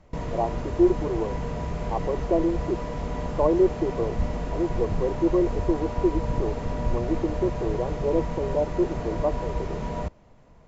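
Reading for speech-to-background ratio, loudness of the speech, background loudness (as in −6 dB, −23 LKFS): 4.5 dB, −27.0 LKFS, −31.5 LKFS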